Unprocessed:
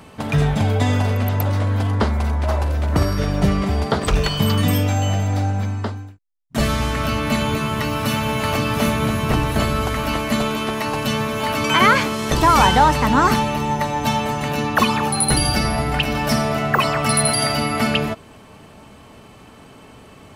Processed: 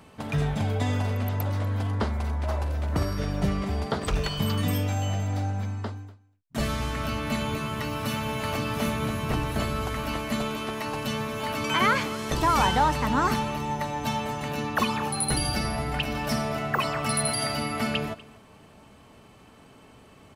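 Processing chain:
single-tap delay 244 ms −21 dB
level −8.5 dB

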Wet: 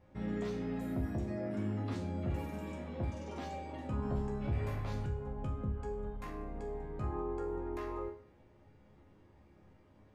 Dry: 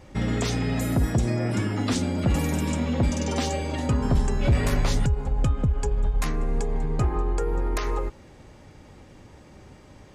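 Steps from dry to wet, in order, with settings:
parametric band 7,700 Hz −14 dB 2.1 octaves
resonators tuned to a chord C#2 major, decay 0.48 s

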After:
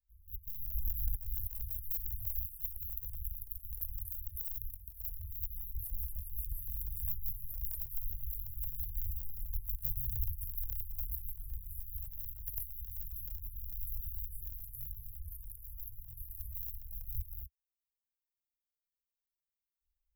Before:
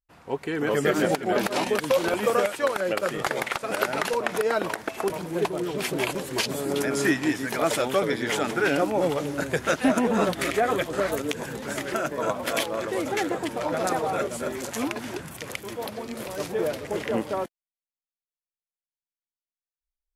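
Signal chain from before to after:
sub-harmonics by changed cycles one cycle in 2, inverted
inverse Chebyshev band-stop filter 220–6,000 Hz, stop band 60 dB
level +5.5 dB

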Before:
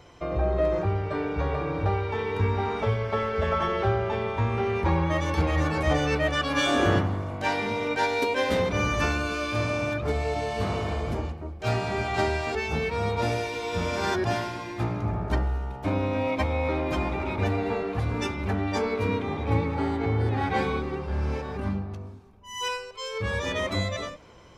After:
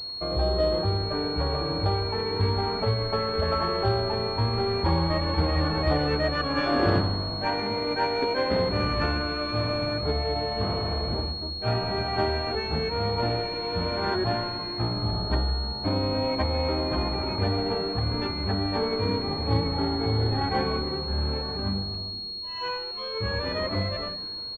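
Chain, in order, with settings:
echo with shifted repeats 155 ms, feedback 62%, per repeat −140 Hz, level −17.5 dB
switching amplifier with a slow clock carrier 4,300 Hz

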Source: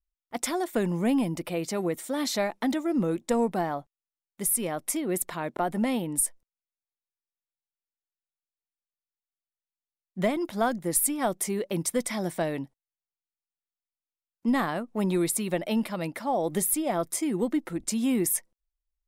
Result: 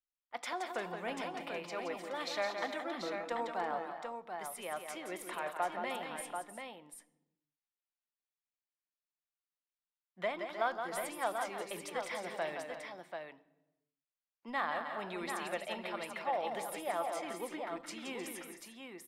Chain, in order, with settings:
three-way crossover with the lows and the highs turned down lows −21 dB, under 570 Hz, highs −19 dB, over 4,300 Hz
multi-tap delay 171/309/352/738 ms −7/−11.5/−14.5/−6 dB
on a send at −14 dB: convolution reverb RT60 1.1 s, pre-delay 3 ms
on the sum: level −4.5 dB

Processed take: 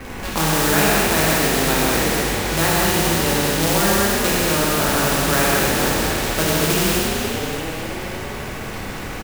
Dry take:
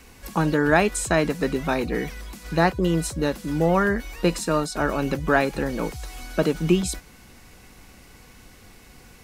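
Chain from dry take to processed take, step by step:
running median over 9 samples
Butterworth low-pass 4,300 Hz
low-shelf EQ 360 Hz +8.5 dB
mains-hum notches 60/120/180/240/300/360/420/480 Hz
in parallel at +2 dB: downward compressor 10 to 1, threshold −28 dBFS, peak gain reduction 18.5 dB
on the sum: low-pass that shuts in the quiet parts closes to 2,300 Hz
floating-point word with a short mantissa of 2 bits
on a send: echo with shifted repeats 286 ms, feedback 54%, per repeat +45 Hz, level −9 dB
on the sum: reverb whose tail is shaped and stops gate 280 ms flat, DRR −7 dB
every bin compressed towards the loudest bin 2 to 1
level −7.5 dB

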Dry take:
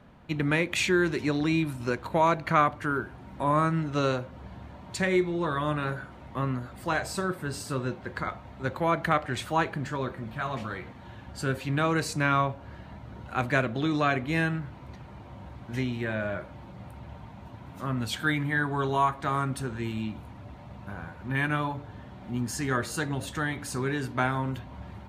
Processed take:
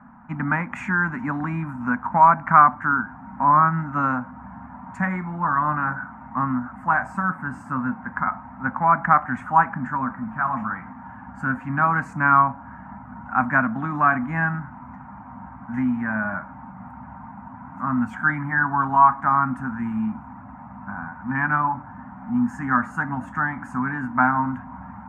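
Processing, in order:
drawn EQ curve 120 Hz 0 dB, 250 Hz +15 dB, 370 Hz −16 dB, 530 Hz −8 dB, 830 Hz +15 dB, 1,500 Hz +13 dB, 2,200 Hz −1 dB, 4,000 Hz −29 dB, 6,900 Hz −12 dB, 11,000 Hz −20 dB
level −3 dB

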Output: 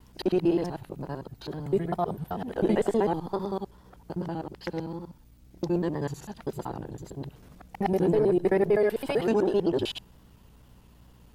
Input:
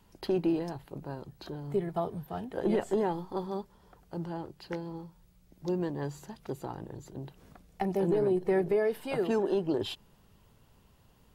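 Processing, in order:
reversed piece by piece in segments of 64 ms
mains hum 60 Hz, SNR 28 dB
tape wow and flutter 67 cents
level +4.5 dB

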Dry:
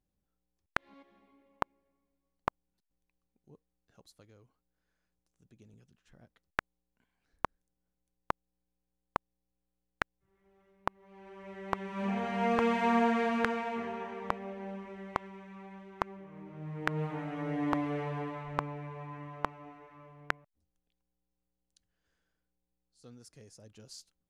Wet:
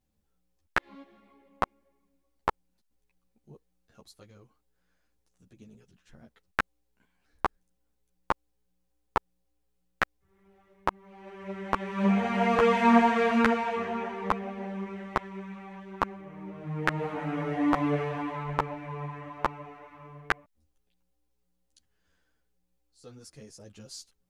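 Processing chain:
string-ensemble chorus
level +9 dB

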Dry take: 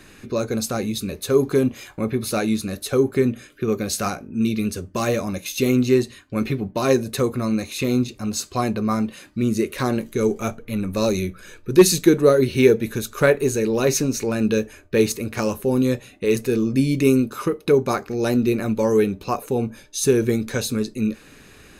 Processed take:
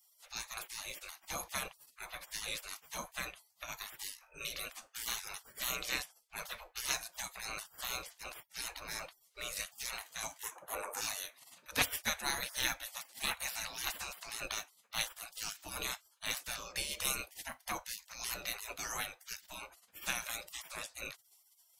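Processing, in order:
gate on every frequency bin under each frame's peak −30 dB weak
0:10.43–0:11.01: octave-band graphic EQ 500/1,000/4,000/8,000 Hz +12/+8/−12/+7 dB
level +1 dB

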